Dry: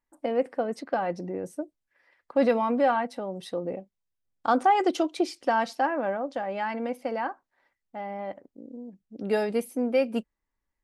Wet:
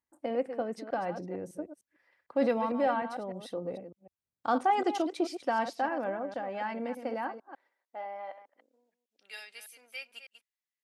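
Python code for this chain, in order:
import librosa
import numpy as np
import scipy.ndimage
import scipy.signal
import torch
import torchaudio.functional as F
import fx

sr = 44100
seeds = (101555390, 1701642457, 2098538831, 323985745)

y = fx.reverse_delay(x, sr, ms=151, wet_db=-10.0)
y = fx.filter_sweep_highpass(y, sr, from_hz=77.0, to_hz=2500.0, start_s=6.59, end_s=9.11, q=1.2)
y = y * 10.0 ** (-5.5 / 20.0)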